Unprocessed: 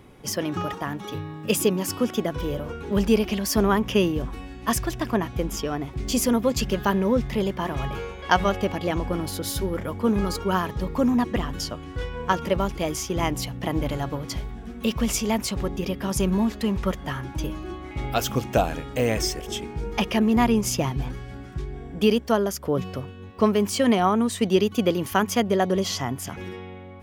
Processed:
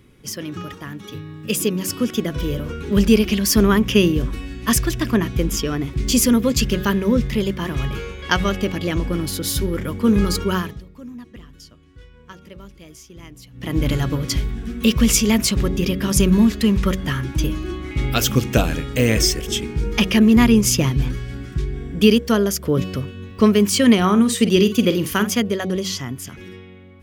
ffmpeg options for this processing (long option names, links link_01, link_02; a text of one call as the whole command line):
ffmpeg -i in.wav -filter_complex "[0:a]asettb=1/sr,asplit=3[link_01][link_02][link_03];[link_01]atrim=end=23.974[link_04];[link_02]atrim=start=23.97:end=25.31,asetpts=PTS-STARTPTS,afade=type=in:duration=0.004:curve=qsin,afade=type=out:start_time=1.336:duration=0.004:curve=qsin,asplit=2[link_05][link_06];[link_06]adelay=49,volume=-11dB[link_07];[link_05][link_07]amix=inputs=2:normalize=0,atrim=end_sample=59094[link_08];[link_03]atrim=start=25.306[link_09];[link_04][link_08]acrossfade=duration=0.004:curve1=hsin:curve2=qsin[link_10];[link_10][link_09]acrossfade=duration=0.004:curve1=qsin:curve2=hsin,asplit=3[link_11][link_12][link_13];[link_11]atrim=end=10.83,asetpts=PTS-STARTPTS,afade=type=out:start_time=10.43:duration=0.4:silence=0.0668344[link_14];[link_12]atrim=start=10.83:end=13.51,asetpts=PTS-STARTPTS,volume=-23.5dB[link_15];[link_13]atrim=start=13.51,asetpts=PTS-STARTPTS,afade=type=in:duration=0.4:silence=0.0668344[link_16];[link_14][link_15][link_16]concat=n=3:v=0:a=1,equalizer=frequency=770:width=1.3:gain=-13.5,bandreject=frequency=94.7:width_type=h:width=4,bandreject=frequency=189.4:width_type=h:width=4,bandreject=frequency=284.1:width_type=h:width=4,bandreject=frequency=378.8:width_type=h:width=4,bandreject=frequency=473.5:width_type=h:width=4,bandreject=frequency=568.2:width_type=h:width=4,bandreject=frequency=662.9:width_type=h:width=4,bandreject=frequency=757.6:width_type=h:width=4,dynaudnorm=framelen=190:gausssize=21:maxgain=11.5dB" out.wav